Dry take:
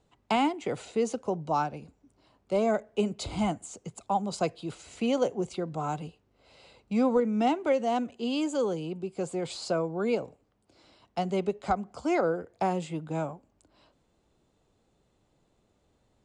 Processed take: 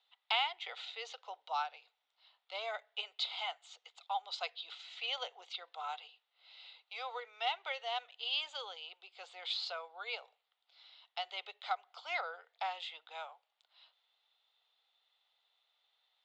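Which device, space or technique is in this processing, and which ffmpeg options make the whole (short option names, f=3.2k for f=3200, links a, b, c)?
phone earpiece: -af "highpass=f=1.2k:w=0.5412,highpass=f=1.2k:w=1.3066,highpass=450,equalizer=f=460:t=q:w=4:g=9,equalizer=f=740:t=q:w=4:g=5,equalizer=f=1.1k:t=q:w=4:g=-9,equalizer=f=1.6k:t=q:w=4:g=-10,equalizer=f=2.4k:t=q:w=4:g=-5,equalizer=f=3.6k:t=q:w=4:g=8,lowpass=f=3.9k:w=0.5412,lowpass=f=3.9k:w=1.3066,volume=4dB"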